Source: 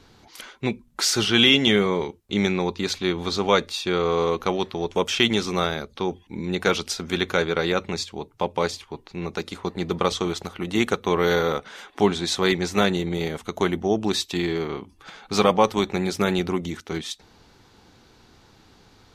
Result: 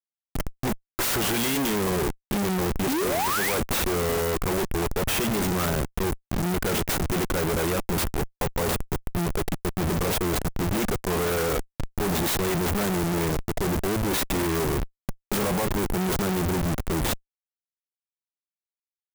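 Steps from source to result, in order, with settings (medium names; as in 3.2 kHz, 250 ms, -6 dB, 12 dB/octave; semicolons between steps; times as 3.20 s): painted sound rise, 2.88–3.54 s, 240–2600 Hz -23 dBFS; Schmitt trigger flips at -31.5 dBFS; sampling jitter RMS 0.059 ms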